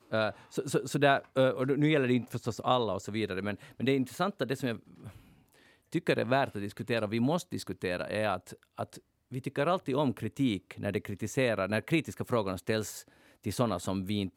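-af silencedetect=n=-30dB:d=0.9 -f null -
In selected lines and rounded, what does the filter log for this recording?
silence_start: 4.75
silence_end: 5.95 | silence_duration: 1.20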